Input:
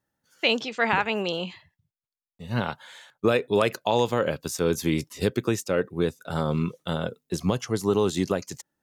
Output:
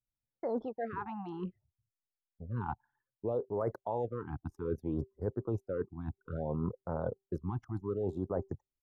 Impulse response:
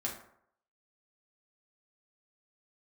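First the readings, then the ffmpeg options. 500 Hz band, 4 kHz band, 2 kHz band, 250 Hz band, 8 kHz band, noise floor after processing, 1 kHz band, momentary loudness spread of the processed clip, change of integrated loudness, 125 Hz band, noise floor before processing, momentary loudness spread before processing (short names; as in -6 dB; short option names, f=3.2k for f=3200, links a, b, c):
-11.0 dB, under -35 dB, -23.5 dB, -11.0 dB, under -40 dB, under -85 dBFS, -12.0 dB, 6 LU, -11.5 dB, -8.0 dB, under -85 dBFS, 8 LU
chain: -filter_complex "[0:a]highshelf=f=2.7k:g=-10.5,bandreject=f=389.5:t=h:w=4,bandreject=f=779:t=h:w=4,anlmdn=1.58,asplit=2[a][b];[b]alimiter=limit=-18.5dB:level=0:latency=1:release=152,volume=1dB[c];[a][c]amix=inputs=2:normalize=0,firequalizer=gain_entry='entry(100,0);entry(160,-9);entry(290,-6);entry(510,-3);entry(870,-1);entry(2200,-23);entry(3300,-26);entry(5200,-24);entry(7600,-24);entry(11000,-14)':delay=0.05:min_phase=1,areverse,acompressor=threshold=-31dB:ratio=6,areverse,afftfilt=real='re*(1-between(b*sr/1024,470*pow(3200/470,0.5+0.5*sin(2*PI*0.62*pts/sr))/1.41,470*pow(3200/470,0.5+0.5*sin(2*PI*0.62*pts/sr))*1.41))':imag='im*(1-between(b*sr/1024,470*pow(3200/470,0.5+0.5*sin(2*PI*0.62*pts/sr))/1.41,470*pow(3200/470,0.5+0.5*sin(2*PI*0.62*pts/sr))*1.41))':win_size=1024:overlap=0.75"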